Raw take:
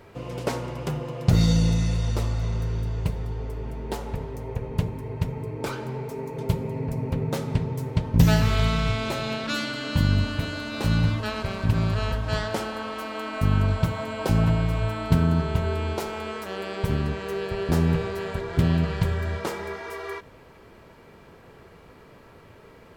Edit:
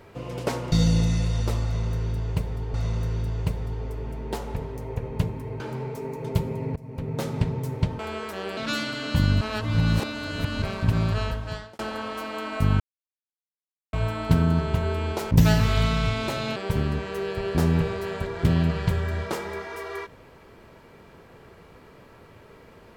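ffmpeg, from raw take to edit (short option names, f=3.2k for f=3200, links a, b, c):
-filter_complex "[0:a]asplit=14[a][b][c][d][e][f][g][h][i][j][k][l][m][n];[a]atrim=end=0.722[o];[b]atrim=start=1.408:end=3.432[p];[c]atrim=start=2.328:end=5.192[q];[d]atrim=start=5.738:end=6.9,asetpts=PTS-STARTPTS,afade=t=out:st=1.158:d=0.004:c=hsin:silence=0.0944061[r];[e]atrim=start=6.9:end=8.132,asetpts=PTS-STARTPTS,afade=t=in:d=0.53:silence=0.0944061[s];[f]atrim=start=16.118:end=16.702[t];[g]atrim=start=9.378:end=10.222[u];[h]atrim=start=10.218:end=11.432,asetpts=PTS-STARTPTS,areverse[v];[i]atrim=start=11.428:end=12.6,asetpts=PTS-STARTPTS,afade=t=out:st=0.562:d=0.61[w];[j]atrim=start=12.6:end=13.61,asetpts=PTS-STARTPTS,afade=t=in:d=0.004:c=hsin,afade=t=out:st=1.006:d=0.004:c=hsin[x];[k]atrim=start=13.61:end=14.74,asetpts=PTS-STARTPTS,volume=0[y];[l]atrim=start=14.74:end=16.122,asetpts=PTS-STARTPTS,afade=t=in:d=0.004:c=hsin[z];[m]atrim=start=8.128:end=9.382[aa];[n]atrim=start=16.698[ab];[o][p]acrossfade=d=0.004:c1=hsin:c2=hsin[ac];[ac][q]acrossfade=d=0.004:c1=hsin:c2=hsin[ad];[r][s]concat=n=2:v=0:a=1[ae];[ad][ae]acrossfade=d=0.004:c1=hsin:c2=hsin[af];[af][t]acrossfade=d=0.004:c1=hsin:c2=hsin[ag];[ag][u]acrossfade=d=0.004:c1=hsin:c2=hsin[ah];[ah][v]acrossfade=d=0.004:c1=hsin:c2=hsin[ai];[w][x][y][z]concat=n=4:v=0:a=1[aj];[ai][aj]acrossfade=d=0.004:c1=hsin:c2=hsin[ak];[ak][aa]acrossfade=d=0.004:c1=hsin:c2=hsin[al];[al][ab]acrossfade=d=0.004:c1=hsin:c2=hsin"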